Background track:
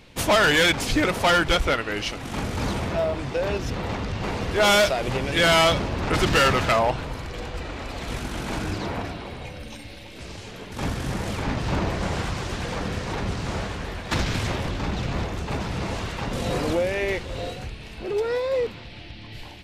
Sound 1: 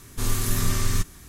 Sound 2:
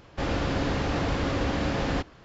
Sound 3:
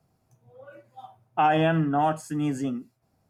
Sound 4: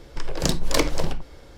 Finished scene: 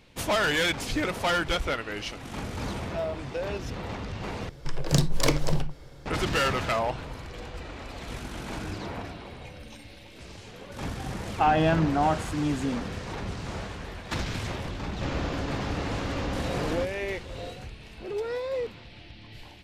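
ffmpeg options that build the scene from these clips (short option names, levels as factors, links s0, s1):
-filter_complex "[0:a]volume=0.473[s0];[4:a]equalizer=f=140:t=o:w=0.28:g=14.5[s1];[2:a]alimiter=limit=0.119:level=0:latency=1:release=71[s2];[s0]asplit=2[s3][s4];[s3]atrim=end=4.494[s5];[s1]atrim=end=1.57,asetpts=PTS-STARTPTS,volume=0.708[s6];[s4]atrim=start=6.056[s7];[3:a]atrim=end=3.29,asetpts=PTS-STARTPTS,volume=0.891,afade=t=in:d=0.004:c=hsin,afade=t=out:st=3.286:d=0.004:c=hsin,adelay=441882S[s8];[s2]atrim=end=2.24,asetpts=PTS-STARTPTS,volume=0.631,afade=t=in:d=0.004:c=hsin,afade=t=out:st=2.236:d=0.004:c=hsin,adelay=14830[s9];[s5][s6]acrossfade=d=0.004:c1=hsin:c2=hsin[s10];[s10][s7]acrossfade=d=0.004:c1=hsin:c2=hsin[s11];[s11][s8][s9]amix=inputs=3:normalize=0"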